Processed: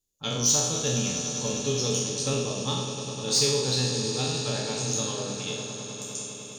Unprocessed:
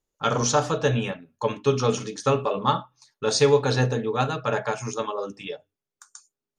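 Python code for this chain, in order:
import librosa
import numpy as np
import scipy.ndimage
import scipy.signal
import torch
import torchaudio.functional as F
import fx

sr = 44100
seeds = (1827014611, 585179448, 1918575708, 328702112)

y = fx.spec_trails(x, sr, decay_s=0.91)
y = fx.curve_eq(y, sr, hz=(230.0, 1400.0, 3500.0), db=(0, -15, -1))
y = fx.rider(y, sr, range_db=4, speed_s=2.0)
y = fx.high_shelf(y, sr, hz=3100.0, db=10.5)
y = fx.echo_swell(y, sr, ms=101, loudest=5, wet_db=-14.0)
y = 10.0 ** (-7.0 / 20.0) * np.tanh(y / 10.0 ** (-7.0 / 20.0))
y = y * 10.0 ** (-6.0 / 20.0)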